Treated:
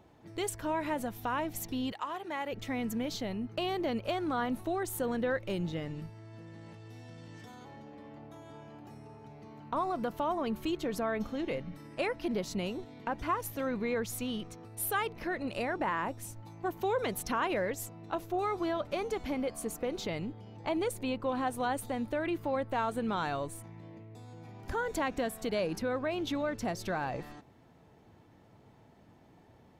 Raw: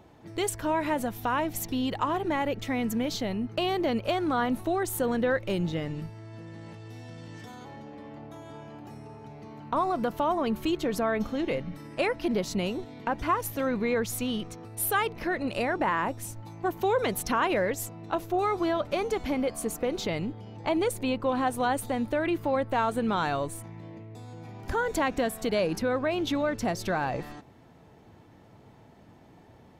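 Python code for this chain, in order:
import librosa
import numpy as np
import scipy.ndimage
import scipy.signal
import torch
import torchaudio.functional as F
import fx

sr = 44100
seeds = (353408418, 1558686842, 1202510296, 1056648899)

y = fx.highpass(x, sr, hz=fx.line((1.91, 1400.0), (2.51, 490.0)), slope=6, at=(1.91, 2.51), fade=0.02)
y = F.gain(torch.from_numpy(y), -5.5).numpy()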